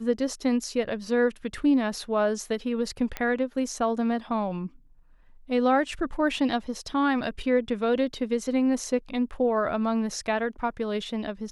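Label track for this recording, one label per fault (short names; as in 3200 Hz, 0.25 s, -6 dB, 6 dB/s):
3.170000	3.170000	pop -15 dBFS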